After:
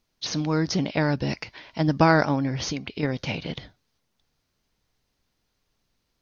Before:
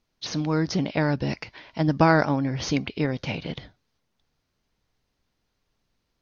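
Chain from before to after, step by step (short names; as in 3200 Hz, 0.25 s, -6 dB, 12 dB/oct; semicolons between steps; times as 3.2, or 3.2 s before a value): high shelf 4300 Hz +5.5 dB; 2.58–3.03 compressor 5:1, threshold -27 dBFS, peak gain reduction 8 dB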